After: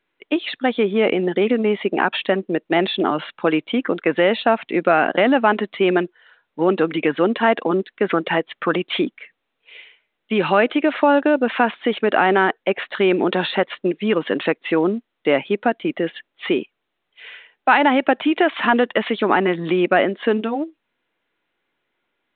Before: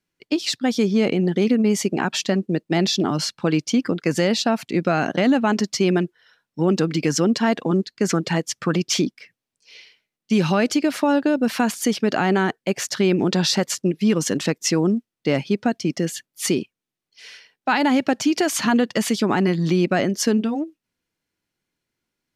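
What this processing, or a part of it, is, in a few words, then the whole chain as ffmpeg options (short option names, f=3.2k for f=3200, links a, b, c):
telephone: -af "highpass=390,lowpass=3k,volume=6.5dB" -ar 8000 -c:a pcm_mulaw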